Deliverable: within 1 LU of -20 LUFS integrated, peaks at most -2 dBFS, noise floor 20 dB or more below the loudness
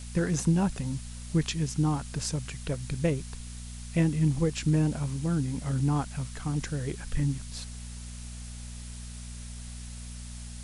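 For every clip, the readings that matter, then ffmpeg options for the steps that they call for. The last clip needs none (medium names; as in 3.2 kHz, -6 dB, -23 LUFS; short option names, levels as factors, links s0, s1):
hum 60 Hz; highest harmonic 240 Hz; hum level -39 dBFS; noise floor -41 dBFS; noise floor target -50 dBFS; loudness -29.5 LUFS; peak level -14.5 dBFS; loudness target -20.0 LUFS
-> -af "bandreject=f=60:t=h:w=4,bandreject=f=120:t=h:w=4,bandreject=f=180:t=h:w=4,bandreject=f=240:t=h:w=4"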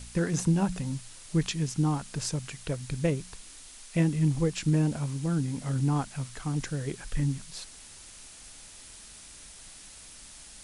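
hum not found; noise floor -49 dBFS; noise floor target -50 dBFS
-> -af "afftdn=nr=6:nf=-49"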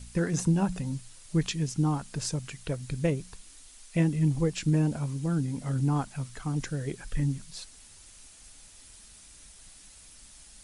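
noise floor -53 dBFS; loudness -30.0 LUFS; peak level -14.0 dBFS; loudness target -20.0 LUFS
-> -af "volume=3.16"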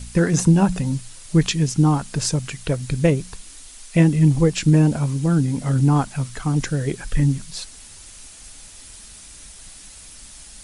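loudness -20.0 LUFS; peak level -4.0 dBFS; noise floor -43 dBFS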